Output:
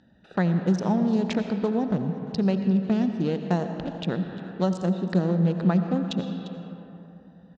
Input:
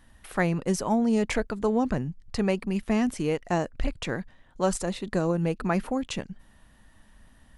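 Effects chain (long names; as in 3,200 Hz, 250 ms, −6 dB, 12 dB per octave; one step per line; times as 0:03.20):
adaptive Wiener filter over 41 samples
downward compressor 4 to 1, threshold −26 dBFS, peak gain reduction 6.5 dB
loudspeaker in its box 140–5,800 Hz, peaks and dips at 180 Hz +9 dB, 1,100 Hz −3 dB, 2,200 Hz −8 dB, 3,800 Hz +7 dB
single-tap delay 348 ms −20 dB
convolution reverb RT60 2.9 s, pre-delay 45 ms, DRR 7.5 dB
one half of a high-frequency compander encoder only
level +3.5 dB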